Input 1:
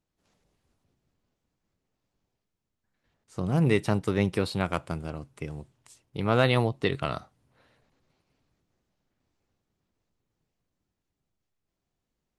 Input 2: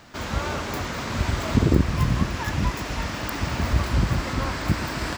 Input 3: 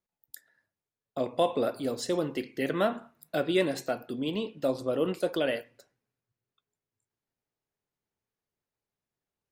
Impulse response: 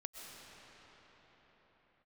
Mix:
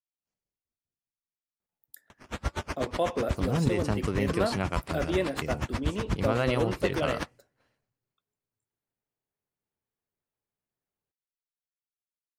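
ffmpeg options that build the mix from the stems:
-filter_complex "[0:a]bandreject=f=3.7k:w=5.8,agate=range=-33dB:threshold=-56dB:ratio=3:detection=peak,equalizer=f=5.9k:t=o:w=1.5:g=4.5,volume=-0.5dB[a];[1:a]acrusher=samples=9:mix=1:aa=0.000001:lfo=1:lforange=5.4:lforate=2.1,lowpass=7.6k,aeval=exprs='val(0)*pow(10,-35*(0.5-0.5*cos(2*PI*8.2*n/s))/20)':c=same,adelay=2100,volume=0dB[b];[2:a]equalizer=f=5.3k:w=0.78:g=-6.5,adelay=1600,volume=-2dB[c];[a][b]amix=inputs=2:normalize=0,acompressor=threshold=-25dB:ratio=2.5,volume=0dB[d];[c][d]amix=inputs=2:normalize=0"

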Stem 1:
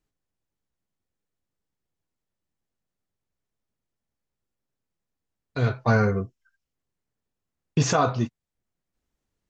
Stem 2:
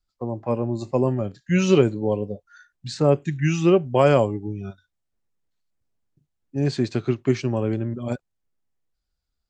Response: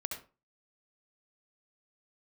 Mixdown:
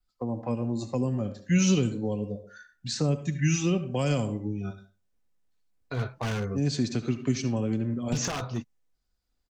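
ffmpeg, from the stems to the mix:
-filter_complex "[0:a]bass=f=250:g=-3,treble=f=4k:g=-4,aeval=exprs='0.133*(abs(mod(val(0)/0.133+3,4)-2)-1)':c=same,adelay=350,volume=-3.5dB[a];[1:a]aecho=1:1:4:0.33,volume=-3.5dB,asplit=2[b][c];[c]volume=-5.5dB[d];[2:a]atrim=start_sample=2205[e];[d][e]afir=irnorm=-1:irlink=0[f];[a][b][f]amix=inputs=3:normalize=0,adynamicequalizer=threshold=0.00224:dfrequency=6100:dqfactor=2.9:tfrequency=6100:tqfactor=2.9:attack=5:release=100:ratio=0.375:range=3:mode=boostabove:tftype=bell,acrossover=split=220|3000[g][h][i];[h]acompressor=threshold=-33dB:ratio=4[j];[g][j][i]amix=inputs=3:normalize=0"

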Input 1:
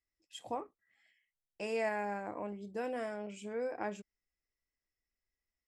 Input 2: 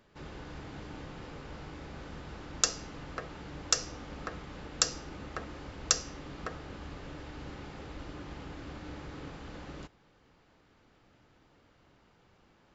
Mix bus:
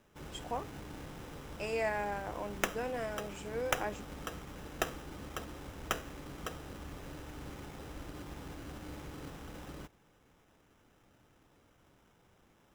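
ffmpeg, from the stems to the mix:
-filter_complex "[0:a]lowshelf=f=230:g=-10,volume=2dB[a];[1:a]lowpass=4.5k,acrusher=samples=10:mix=1:aa=0.000001,volume=-2dB[b];[a][b]amix=inputs=2:normalize=0"

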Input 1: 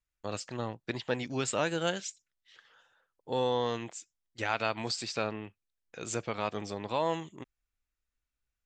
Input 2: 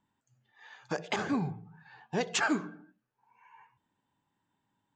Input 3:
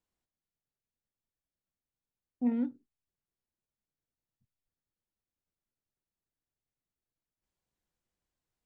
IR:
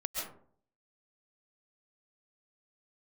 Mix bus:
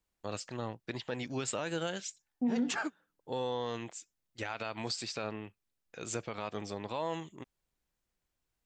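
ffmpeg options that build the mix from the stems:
-filter_complex "[0:a]volume=-2dB[a];[1:a]adelay=350,volume=-6.5dB[b];[2:a]volume=2dB,asplit=2[c][d];[d]apad=whole_len=233824[e];[b][e]sidechaingate=range=-33dB:threshold=-55dB:ratio=16:detection=peak[f];[a][f][c]amix=inputs=3:normalize=0,alimiter=limit=-24dB:level=0:latency=1:release=59"

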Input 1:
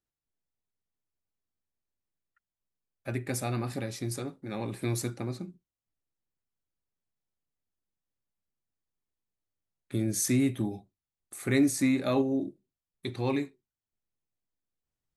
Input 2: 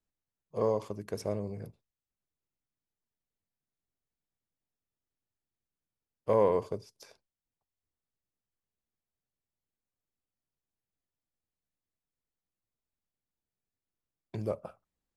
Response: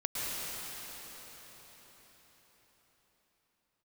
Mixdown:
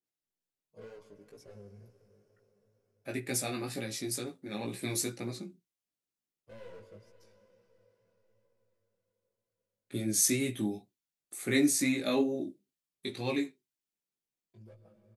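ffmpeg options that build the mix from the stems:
-filter_complex "[0:a]highpass=180,volume=2.5dB,asplit=2[a][b];[1:a]asoftclip=type=hard:threshold=-28.5dB,asplit=2[c][d];[d]adelay=5.5,afreqshift=-0.63[e];[c][e]amix=inputs=2:normalize=1,adelay=200,volume=-9.5dB,asplit=2[f][g];[g]volume=-16.5dB[h];[b]apad=whole_len=677808[i];[f][i]sidechaincompress=threshold=-47dB:ratio=4:attack=16:release=1250[j];[2:a]atrim=start_sample=2205[k];[h][k]afir=irnorm=-1:irlink=0[l];[a][j][l]amix=inputs=3:normalize=0,equalizer=f=1.1k:w=0.82:g=-5.5,flanger=delay=16.5:depth=3.4:speed=2.1,adynamicequalizer=threshold=0.00251:dfrequency=1600:dqfactor=0.7:tfrequency=1600:tqfactor=0.7:attack=5:release=100:ratio=0.375:range=2.5:mode=boostabove:tftype=highshelf"

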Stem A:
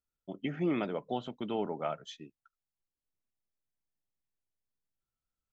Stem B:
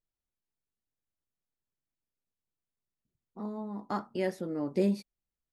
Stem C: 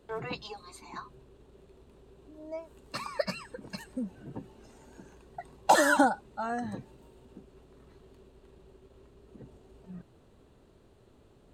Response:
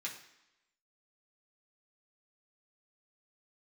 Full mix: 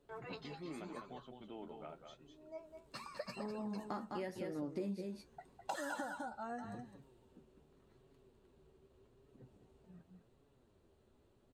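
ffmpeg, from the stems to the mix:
-filter_complex "[0:a]volume=-12dB,asplit=2[a][b];[b]volume=-6.5dB[c];[1:a]volume=1.5dB,asplit=2[d][e];[e]volume=-6.5dB[f];[2:a]volume=-7.5dB,asplit=2[g][h];[h]volume=-7.5dB[i];[c][f][i]amix=inputs=3:normalize=0,aecho=0:1:206:1[j];[a][d][g][j]amix=inputs=4:normalize=0,flanger=delay=7:depth=6.6:regen=43:speed=0.86:shape=sinusoidal,acompressor=threshold=-39dB:ratio=5"

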